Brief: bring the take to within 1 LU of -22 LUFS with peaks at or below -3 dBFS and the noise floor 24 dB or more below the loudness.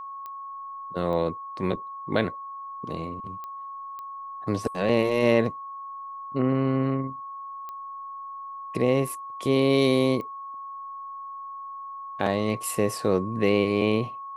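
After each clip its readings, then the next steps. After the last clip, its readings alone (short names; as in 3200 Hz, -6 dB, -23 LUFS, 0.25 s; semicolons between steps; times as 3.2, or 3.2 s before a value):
clicks 6; steady tone 1100 Hz; tone level -35 dBFS; loudness -26.0 LUFS; peak -6.5 dBFS; loudness target -22.0 LUFS
-> de-click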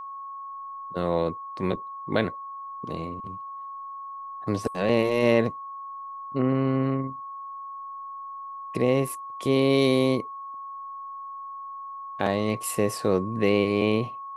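clicks 0; steady tone 1100 Hz; tone level -35 dBFS
-> notch 1100 Hz, Q 30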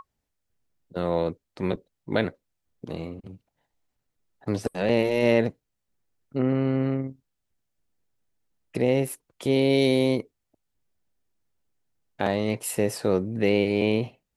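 steady tone none; loudness -25.5 LUFS; peak -7.0 dBFS; loudness target -22.0 LUFS
-> gain +3.5 dB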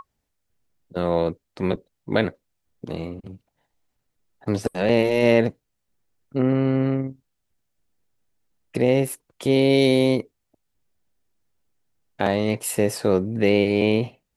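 loudness -22.0 LUFS; peak -3.5 dBFS; noise floor -77 dBFS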